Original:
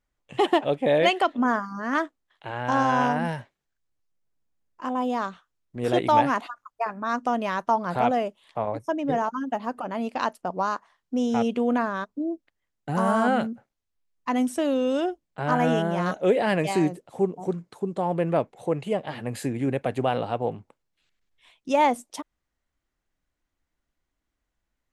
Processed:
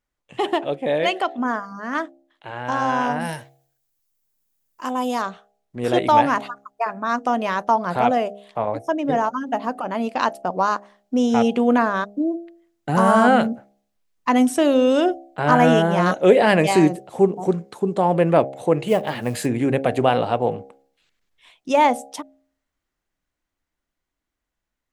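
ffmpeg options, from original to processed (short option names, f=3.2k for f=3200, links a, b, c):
-filter_complex "[0:a]asettb=1/sr,asplit=3[a][b][c];[a]atrim=end=3.204[d];[b]atrim=start=3.2:end=5.22,asetpts=PTS-STARTPTS,afade=t=in:d=0.004:c=qsin,afade=t=out:st=2.016:d=0.004:c=qsin,aemphasis=mode=production:type=75fm[e];[c]atrim=start=5.216[f];[d][e]acrossfade=d=0.004:c1=hsin:c2=qsin[g];[g][f]acrossfade=d=0.004:c1=qsin:c2=hsin,asettb=1/sr,asplit=3[h][i][j];[h]atrim=end=18.884[k];[i]atrim=start=18.88:end=19.46,asetpts=PTS-STARTPTS,afade=t=in:d=0.004:c=qsin,afade=t=out:st=0.576:d=0.004:c=qsin,acrusher=bits=7:mode=log:mix=0:aa=0.000001[l];[j]atrim=start=19.456[m];[k][l]acrossfade=d=0.004:c1=hsin:c2=qsin[n];[n][m]acrossfade=d=0.004:c1=qsin:c2=hsin,dynaudnorm=f=610:g=13:m=11.5dB,lowshelf=f=130:g=-4.5,bandreject=f=67.75:t=h:w=4,bandreject=f=135.5:t=h:w=4,bandreject=f=203.25:t=h:w=4,bandreject=f=271:t=h:w=4,bandreject=f=338.75:t=h:w=4,bandreject=f=406.5:t=h:w=4,bandreject=f=474.25:t=h:w=4,bandreject=f=542:t=h:w=4,bandreject=f=609.75:t=h:w=4,bandreject=f=677.5:t=h:w=4,bandreject=f=745.25:t=h:w=4,bandreject=f=813:t=h:w=4"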